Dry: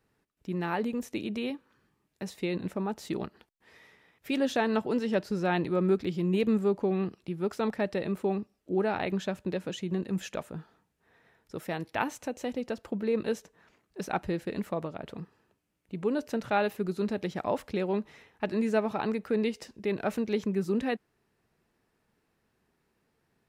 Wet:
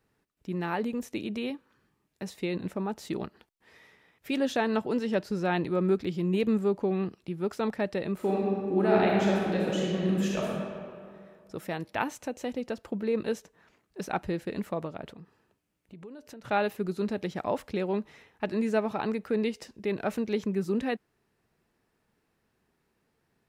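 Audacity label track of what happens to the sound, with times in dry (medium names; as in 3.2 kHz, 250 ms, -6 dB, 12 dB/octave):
8.150000	10.480000	reverb throw, RT60 2.2 s, DRR -4 dB
15.120000	16.450000	compression 4:1, threshold -45 dBFS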